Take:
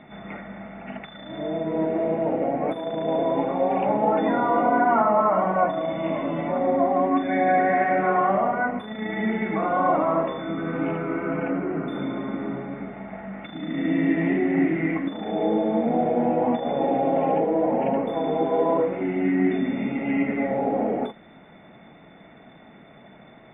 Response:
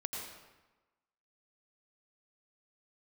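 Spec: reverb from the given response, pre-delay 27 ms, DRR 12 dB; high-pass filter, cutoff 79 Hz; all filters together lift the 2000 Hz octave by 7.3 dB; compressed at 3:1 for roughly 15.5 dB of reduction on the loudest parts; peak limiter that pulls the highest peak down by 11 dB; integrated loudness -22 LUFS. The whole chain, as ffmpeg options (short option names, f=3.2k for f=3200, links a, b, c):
-filter_complex "[0:a]highpass=79,equalizer=f=2k:t=o:g=9,acompressor=threshold=-37dB:ratio=3,alimiter=level_in=9.5dB:limit=-24dB:level=0:latency=1,volume=-9.5dB,asplit=2[a][b];[1:a]atrim=start_sample=2205,adelay=27[c];[b][c]afir=irnorm=-1:irlink=0,volume=-13dB[d];[a][d]amix=inputs=2:normalize=0,volume=19.5dB"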